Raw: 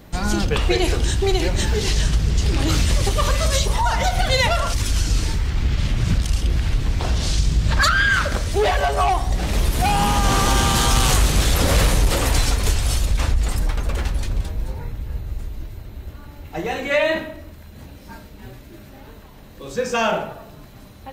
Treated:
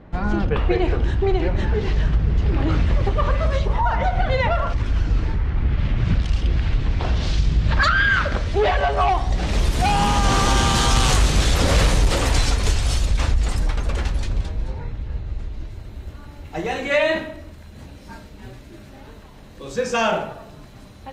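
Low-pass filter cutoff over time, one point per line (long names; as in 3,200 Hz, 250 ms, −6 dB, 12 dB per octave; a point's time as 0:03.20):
0:05.63 1,800 Hz
0:06.30 3,500 Hz
0:08.97 3,500 Hz
0:09.64 7,600 Hz
0:14.14 7,600 Hz
0:14.84 4,600 Hz
0:15.47 4,600 Hz
0:15.88 9,800 Hz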